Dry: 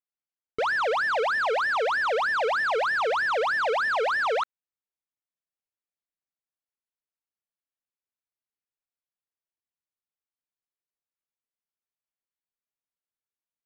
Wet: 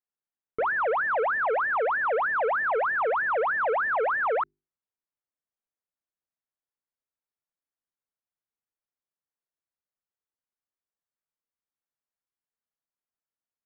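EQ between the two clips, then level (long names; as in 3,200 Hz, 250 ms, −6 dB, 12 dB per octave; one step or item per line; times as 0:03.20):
low-pass filter 1,900 Hz 24 dB per octave
mains-hum notches 50/100/150/200/250/300/350/400 Hz
0.0 dB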